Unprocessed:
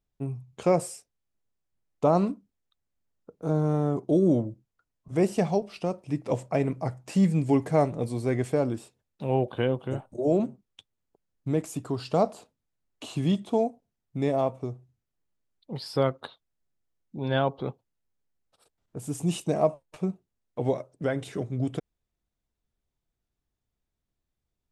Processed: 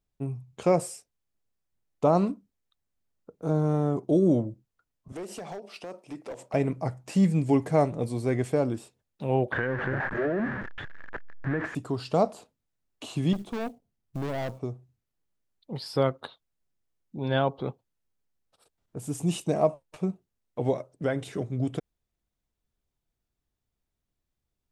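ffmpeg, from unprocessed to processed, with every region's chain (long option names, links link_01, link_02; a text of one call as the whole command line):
ffmpeg -i in.wav -filter_complex "[0:a]asettb=1/sr,asplit=3[link_01][link_02][link_03];[link_01]atrim=end=5.124[link_04];[link_02]atrim=start=5.12:end=6.54,asetpts=PTS-STARTPTS,afade=type=in:duration=0.004:curve=qsin,afade=type=out:start_time=1.416:duration=0.004:curve=qsin,highpass=310,acompressor=threshold=-31dB:ratio=10:attack=3.2:release=140:knee=1:detection=peak,asoftclip=type=hard:threshold=-32.5dB[link_05];[link_03]atrim=start=6.536[link_06];[link_04][link_05]acrossfade=duration=0.004:curve1=hsin:curve2=qsin[link_07];[link_07][link_06]acrossfade=duration=0.004:curve1=qsin:curve2=hsin,asettb=1/sr,asplit=3[link_08][link_09][link_10];[link_08]atrim=end=9.524[link_11];[link_09]atrim=start=9.52:end=11.75,asetpts=PTS-STARTPTS,afade=type=in:duration=0.004:curve=qsin,afade=type=out:start_time=2.226:duration=0.004:curve=qsin,aeval=exprs='val(0)+0.5*0.0299*sgn(val(0))':channel_layout=same,lowpass=frequency=1700:width_type=q:width=10,acompressor=threshold=-23dB:ratio=10:attack=3.2:release=140:knee=1:detection=peak[link_12];[link_10]atrim=start=11.746[link_13];[link_11][link_12]acrossfade=duration=0.004:curve1=hsin:curve2=qsin[link_14];[link_14][link_13]acrossfade=duration=0.004:curve1=qsin:curve2=hsin,asettb=1/sr,asplit=3[link_15][link_16][link_17];[link_15]atrim=end=13.334[link_18];[link_16]atrim=start=13.33:end=14.59,asetpts=PTS-STARTPTS,afade=type=in:duration=0.004:curve=qsin,afade=type=out:start_time=1.256:duration=0.004:curve=qsin,lowshelf=frequency=350:gain=7,aeval=exprs='(tanh(28.2*val(0)+0.6)-tanh(0.6))/28.2':channel_layout=same,acrusher=bits=6:mode=log:mix=0:aa=0.000001[link_19];[link_17]atrim=start=14.586[link_20];[link_18][link_19]acrossfade=duration=0.004:curve1=hsin:curve2=qsin[link_21];[link_21][link_20]acrossfade=duration=0.004:curve1=qsin:curve2=hsin" out.wav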